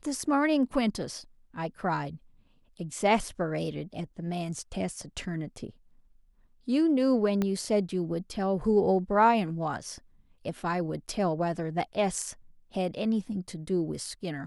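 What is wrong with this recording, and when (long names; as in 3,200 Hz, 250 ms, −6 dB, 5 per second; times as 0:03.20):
0:07.42: click −16 dBFS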